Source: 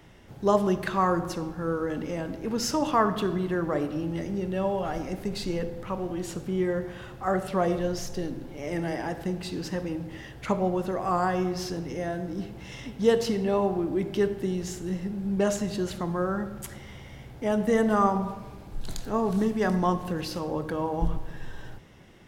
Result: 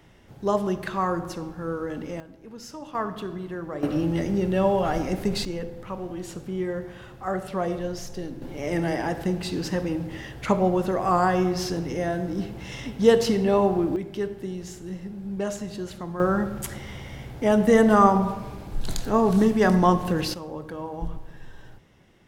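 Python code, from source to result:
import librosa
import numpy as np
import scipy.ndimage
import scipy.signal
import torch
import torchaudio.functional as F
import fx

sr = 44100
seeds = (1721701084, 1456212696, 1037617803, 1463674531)

y = fx.gain(x, sr, db=fx.steps((0.0, -1.5), (2.2, -13.0), (2.95, -6.0), (3.83, 6.0), (5.45, -2.0), (8.42, 4.5), (13.96, -4.0), (16.2, 6.0), (20.34, -5.0)))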